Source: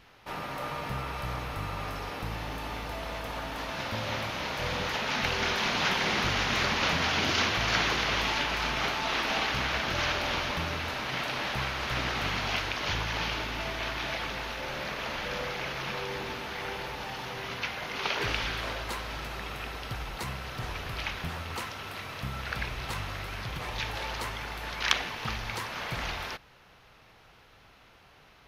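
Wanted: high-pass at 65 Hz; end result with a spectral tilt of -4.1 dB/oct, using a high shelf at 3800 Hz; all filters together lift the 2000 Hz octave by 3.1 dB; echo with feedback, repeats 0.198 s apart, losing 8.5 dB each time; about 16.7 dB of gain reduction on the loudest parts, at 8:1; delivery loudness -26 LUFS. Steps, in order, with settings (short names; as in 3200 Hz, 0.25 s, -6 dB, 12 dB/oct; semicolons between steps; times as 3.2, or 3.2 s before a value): HPF 65 Hz; bell 2000 Hz +6 dB; high shelf 3800 Hz -8 dB; compressor 8:1, threshold -36 dBFS; feedback echo 0.198 s, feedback 38%, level -8.5 dB; gain +12 dB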